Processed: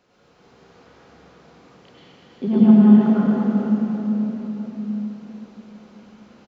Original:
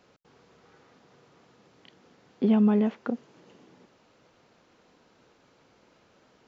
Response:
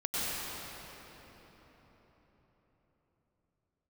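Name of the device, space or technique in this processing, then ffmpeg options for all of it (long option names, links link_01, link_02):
cave: -filter_complex "[0:a]asettb=1/sr,asplit=3[link_01][link_02][link_03];[link_01]atrim=end=2.474[link_04];[link_02]atrim=start=2.47:end=3.12,asetpts=PTS-STARTPTS,afade=type=in:duration=0.004:curve=qsin,afade=type=out:start_time=0.646:duration=0.004:curve=qsin,equalizer=frequency=160:width_type=o:width=0.67:gain=10,equalizer=frequency=400:width_type=o:width=0.67:gain=-11,equalizer=frequency=2500:width_type=o:width=0.67:gain=-10[link_05];[link_03]atrim=start=3.116[link_06];[link_04][link_05]acrossfade=duration=0.004:curve1=hsin:curve2=qsin[link_07];[link_07][link_06]acrossfade=duration=0.004:curve1=qsin:curve2=hsin,aecho=1:1:342:0.355[link_08];[1:a]atrim=start_sample=2205[link_09];[link_08][link_09]afir=irnorm=-1:irlink=0"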